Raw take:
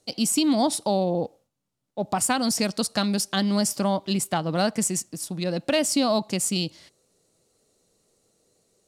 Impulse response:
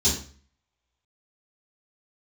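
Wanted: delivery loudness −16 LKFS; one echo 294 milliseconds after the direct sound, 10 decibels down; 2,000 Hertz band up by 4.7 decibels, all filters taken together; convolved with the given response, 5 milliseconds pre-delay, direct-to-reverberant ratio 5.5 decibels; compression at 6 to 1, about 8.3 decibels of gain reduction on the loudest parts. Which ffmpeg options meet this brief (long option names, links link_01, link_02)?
-filter_complex "[0:a]equalizer=frequency=2000:width_type=o:gain=6.5,acompressor=threshold=-26dB:ratio=6,aecho=1:1:294:0.316,asplit=2[link_01][link_02];[1:a]atrim=start_sample=2205,adelay=5[link_03];[link_02][link_03]afir=irnorm=-1:irlink=0,volume=-17dB[link_04];[link_01][link_04]amix=inputs=2:normalize=0,volume=9.5dB"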